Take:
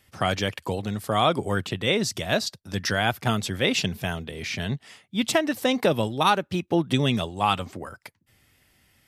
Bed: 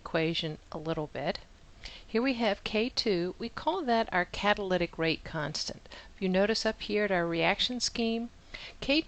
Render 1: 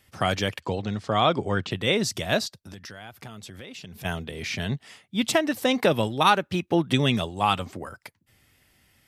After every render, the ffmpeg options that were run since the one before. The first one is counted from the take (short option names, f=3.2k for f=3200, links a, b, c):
-filter_complex "[0:a]asettb=1/sr,asplit=3[a][b][c];[a]atrim=end=0.604[d];[b]atrim=start=0.6:end=1.71,asetpts=PTS-STARTPTS,afade=t=in:d=0.004:c=qsin,afade=t=out:st=1.106:d=0.004:c=qsin,lowpass=f=6.4k:w=0.5412,lowpass=f=6.4k:w=1.3066[e];[c]atrim=start=1.706[f];[d][e]acrossfade=d=0.004:c1=hsin:c2=qsin[g];[g][f]acrossfade=d=0.004:c1=qsin:c2=hsin,asplit=3[h][i][j];[h]afade=t=out:st=2.46:d=0.02[k];[i]acompressor=threshold=-38dB:ratio=8:attack=3.2:release=140:knee=1:detection=peak,afade=t=in:st=2.46:d=0.02,afade=t=out:st=4.04:d=0.02[l];[j]afade=t=in:st=4.04:d=0.02[m];[k][l][m]amix=inputs=3:normalize=0,asettb=1/sr,asplit=3[n][o][p];[n]atrim=end=5.704[q];[o]atrim=start=5.7:end=7.18,asetpts=PTS-STARTPTS,afade=t=in:d=0.004:c=qsin,afade=t=out:st=1.476:d=0.004:c=qsin,equalizer=f=1.9k:t=o:w=1.7:g=3[r];[p]atrim=start=7.176[s];[q][r]acrossfade=d=0.004:c1=hsin:c2=qsin[t];[t][s]acrossfade=d=0.004:c1=qsin:c2=hsin"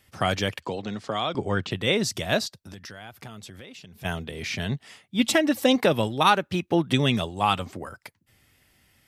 -filter_complex "[0:a]asettb=1/sr,asplit=3[a][b][c];[a]atrim=end=0.654[d];[b]atrim=start=0.65:end=1.35,asetpts=PTS-STARTPTS,afade=t=in:d=0.004:c=qsin,afade=t=out:st=0.696:d=0.004:c=qsin,acrossover=split=160|2700[e][f][g];[e]acompressor=threshold=-47dB:ratio=4[h];[f]acompressor=threshold=-26dB:ratio=4[i];[g]acompressor=threshold=-31dB:ratio=4[j];[h][i][j]amix=inputs=3:normalize=0[k];[c]atrim=start=1.346[l];[d][k]acrossfade=d=0.004:c1=hsin:c2=qsin[m];[m][l]acrossfade=d=0.004:c1=qsin:c2=hsin,asettb=1/sr,asplit=3[n][o][p];[n]atrim=end=5.194[q];[o]atrim=start=5.19:end=5.76,asetpts=PTS-STARTPTS,afade=t=in:d=0.004:c=qsin,afade=t=out:st=0.566:d=0.004:c=qsin,aecho=1:1:3.6:0.65,atrim=end_sample=25137[r];[p]atrim=start=5.756[s];[q][r]acrossfade=d=0.004:c1=hsin:c2=qsin[t];[t][s]acrossfade=d=0.004:c1=qsin:c2=hsin,asplit=2[u][v];[u]atrim=end=4.02,asetpts=PTS-STARTPTS,afade=t=out:st=3.37:d=0.65:silence=0.446684[w];[v]atrim=start=4.02,asetpts=PTS-STARTPTS,afade=t=in:d=0.004:c=hsin:silence=0.446684[x];[w][x]concat=n=2:v=0:a=1"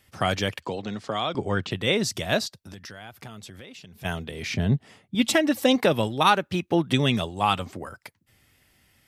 -filter_complex "[0:a]asettb=1/sr,asplit=3[a][b][c];[a]atrim=end=4.544[d];[b]atrim=start=4.54:end=5.15,asetpts=PTS-STARTPTS,afade=t=in:d=0.004:c=qsin,afade=t=out:st=0.606:d=0.004:c=qsin,tiltshelf=f=880:g=7.5[e];[c]atrim=start=5.146[f];[d][e]acrossfade=d=0.004:c1=hsin:c2=qsin[g];[g][f]acrossfade=d=0.004:c1=qsin:c2=hsin"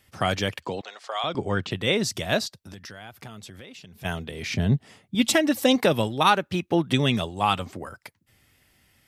-filter_complex "[0:a]asettb=1/sr,asplit=3[a][b][c];[a]atrim=end=0.814[d];[b]atrim=start=0.81:end=1.24,asetpts=PTS-STARTPTS,afade=t=in:d=0.004:c=qsin,afade=t=out:st=0.426:d=0.004:c=qsin,highpass=f=590:w=0.5412,highpass=f=590:w=1.3066[e];[c]atrim=start=1.236[f];[d][e]acrossfade=d=0.004:c1=hsin:c2=qsin[g];[g][f]acrossfade=d=0.004:c1=qsin:c2=hsin,asettb=1/sr,asplit=3[h][i][j];[h]atrim=end=4.524[k];[i]atrim=start=4.52:end=6.03,asetpts=PTS-STARTPTS,afade=t=in:d=0.004:c=qsin,afade=t=out:st=1.506:d=0.004:c=qsin,bass=f=250:g=1,treble=f=4k:g=3[l];[j]atrim=start=6.026[m];[k][l]acrossfade=d=0.004:c1=hsin:c2=qsin[n];[n][m]acrossfade=d=0.004:c1=qsin:c2=hsin"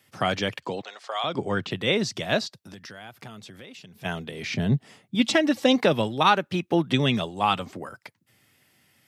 -filter_complex "[0:a]highpass=f=110:w=0.5412,highpass=f=110:w=1.3066,acrossover=split=6500[a][b];[b]acompressor=threshold=-55dB:ratio=4:attack=1:release=60[c];[a][c]amix=inputs=2:normalize=0"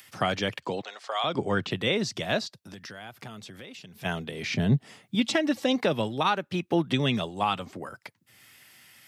-filter_complex "[0:a]acrossover=split=920[a][b];[b]acompressor=mode=upward:threshold=-44dB:ratio=2.5[c];[a][c]amix=inputs=2:normalize=0,alimiter=limit=-13.5dB:level=0:latency=1:release=489"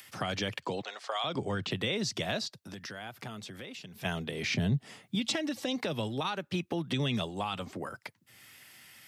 -filter_complex "[0:a]alimiter=limit=-18dB:level=0:latency=1:release=58,acrossover=split=140|3000[a][b][c];[b]acompressor=threshold=-31dB:ratio=6[d];[a][d][c]amix=inputs=3:normalize=0"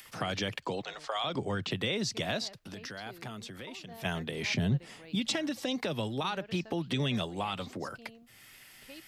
-filter_complex "[1:a]volume=-23dB[a];[0:a][a]amix=inputs=2:normalize=0"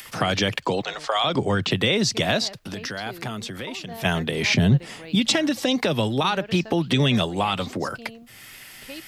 -af "volume=11dB"